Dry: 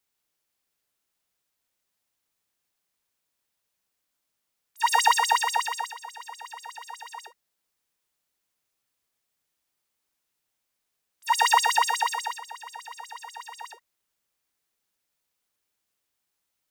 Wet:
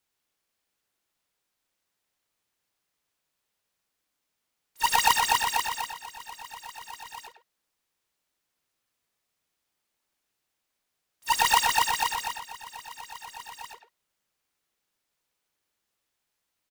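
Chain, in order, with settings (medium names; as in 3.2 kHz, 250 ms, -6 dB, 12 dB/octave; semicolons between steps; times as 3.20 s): square wave that keeps the level; companded quantiser 8-bit; speakerphone echo 100 ms, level -8 dB; trim -5 dB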